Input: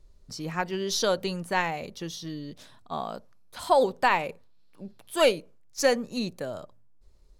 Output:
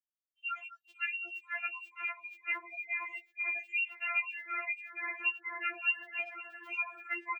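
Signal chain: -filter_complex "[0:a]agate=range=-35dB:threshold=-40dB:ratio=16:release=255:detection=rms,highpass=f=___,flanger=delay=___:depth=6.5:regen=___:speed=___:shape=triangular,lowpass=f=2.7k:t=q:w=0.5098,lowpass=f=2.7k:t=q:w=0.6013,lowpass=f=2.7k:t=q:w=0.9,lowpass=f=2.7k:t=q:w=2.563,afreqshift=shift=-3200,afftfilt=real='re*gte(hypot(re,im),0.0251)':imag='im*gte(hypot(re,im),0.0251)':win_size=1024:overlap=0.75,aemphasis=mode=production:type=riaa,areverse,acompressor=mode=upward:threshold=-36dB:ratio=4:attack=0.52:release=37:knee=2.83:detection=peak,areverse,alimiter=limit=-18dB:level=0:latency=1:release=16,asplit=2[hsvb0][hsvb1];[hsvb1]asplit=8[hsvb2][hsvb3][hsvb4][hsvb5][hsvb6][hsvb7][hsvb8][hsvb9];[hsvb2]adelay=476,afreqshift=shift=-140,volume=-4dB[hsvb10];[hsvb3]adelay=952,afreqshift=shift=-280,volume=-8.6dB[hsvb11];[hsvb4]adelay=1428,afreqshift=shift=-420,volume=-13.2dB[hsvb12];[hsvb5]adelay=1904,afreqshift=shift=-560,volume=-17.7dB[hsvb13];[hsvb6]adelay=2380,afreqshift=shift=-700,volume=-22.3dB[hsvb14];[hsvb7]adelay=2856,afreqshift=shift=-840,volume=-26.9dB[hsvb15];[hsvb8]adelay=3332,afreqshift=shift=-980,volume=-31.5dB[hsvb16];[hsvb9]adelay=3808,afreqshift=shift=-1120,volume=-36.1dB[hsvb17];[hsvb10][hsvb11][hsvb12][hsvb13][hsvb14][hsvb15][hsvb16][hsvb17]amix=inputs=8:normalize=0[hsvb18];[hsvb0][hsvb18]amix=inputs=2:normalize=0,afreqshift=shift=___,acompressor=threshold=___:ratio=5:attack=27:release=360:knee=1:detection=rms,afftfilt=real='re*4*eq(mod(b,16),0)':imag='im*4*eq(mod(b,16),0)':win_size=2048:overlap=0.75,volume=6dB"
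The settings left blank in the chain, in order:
700, 6.8, 63, 0.55, 64, -37dB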